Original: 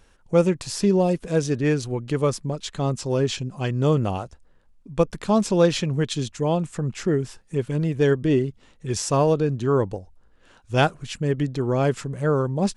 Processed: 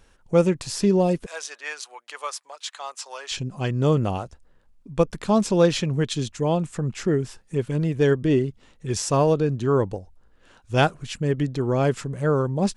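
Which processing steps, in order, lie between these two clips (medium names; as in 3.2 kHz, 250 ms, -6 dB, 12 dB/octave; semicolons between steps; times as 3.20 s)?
1.26–3.32 s: high-pass 810 Hz 24 dB/octave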